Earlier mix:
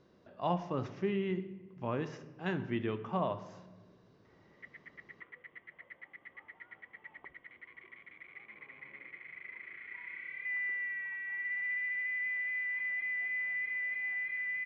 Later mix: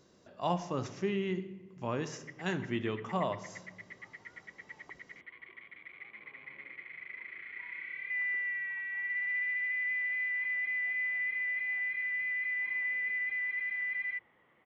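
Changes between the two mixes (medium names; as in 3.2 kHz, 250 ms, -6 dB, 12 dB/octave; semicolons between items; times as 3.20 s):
background: entry -2.35 s; master: remove distance through air 230 m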